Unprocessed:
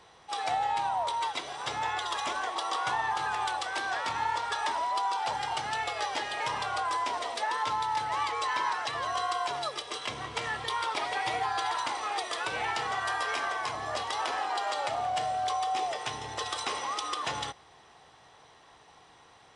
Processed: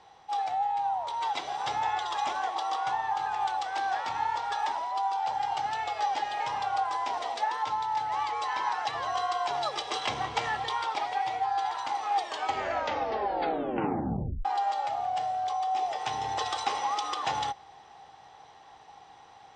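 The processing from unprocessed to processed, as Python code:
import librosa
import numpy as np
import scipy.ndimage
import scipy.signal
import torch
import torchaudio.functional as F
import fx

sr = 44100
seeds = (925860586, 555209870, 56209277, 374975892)

y = fx.edit(x, sr, fx.tape_stop(start_s=12.16, length_s=2.29), tone=tone)
y = scipy.signal.sosfilt(scipy.signal.butter(4, 7400.0, 'lowpass', fs=sr, output='sos'), y)
y = fx.peak_eq(y, sr, hz=800.0, db=14.0, octaves=0.21)
y = fx.rider(y, sr, range_db=10, speed_s=0.5)
y = y * 10.0 ** (-4.5 / 20.0)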